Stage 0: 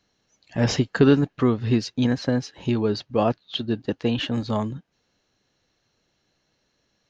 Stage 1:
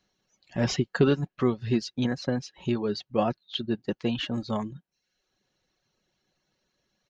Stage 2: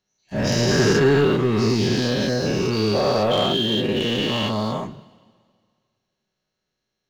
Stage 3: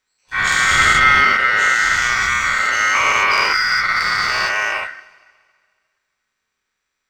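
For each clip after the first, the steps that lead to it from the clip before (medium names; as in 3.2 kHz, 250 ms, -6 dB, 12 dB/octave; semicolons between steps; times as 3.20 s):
reverb removal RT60 0.67 s; comb 5.4 ms, depth 34%; trim -4 dB
every event in the spectrogram widened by 480 ms; waveshaping leveller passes 2; two-slope reverb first 0.23 s, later 1.9 s, from -18 dB, DRR 9 dB; trim -7.5 dB
ring modulator 1.7 kHz; trim +7 dB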